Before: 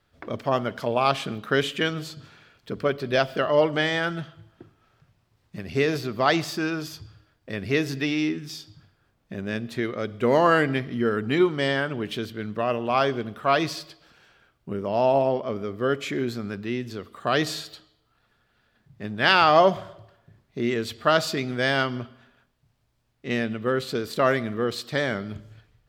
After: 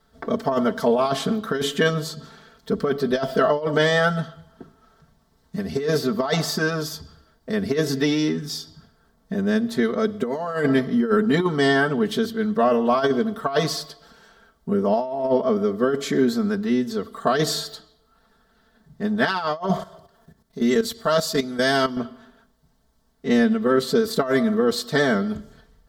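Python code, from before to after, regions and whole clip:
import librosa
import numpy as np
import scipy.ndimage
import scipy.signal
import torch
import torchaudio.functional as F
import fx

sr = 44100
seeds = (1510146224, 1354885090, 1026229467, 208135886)

y = fx.chain(x, sr, fx.level_steps(step_db=13),
    fx.high_shelf(hz=4300.0, db=8.5), at=(19.79, 21.97))
y = fx.peak_eq(y, sr, hz=2500.0, db=-14.5, octaves=0.55)
y = y + 0.99 * np.pad(y, (int(4.5 * sr / 1000.0), 0))[:len(y)]
y = fx.over_compress(y, sr, threshold_db=-21.0, ratio=-0.5)
y = y * librosa.db_to_amplitude(3.0)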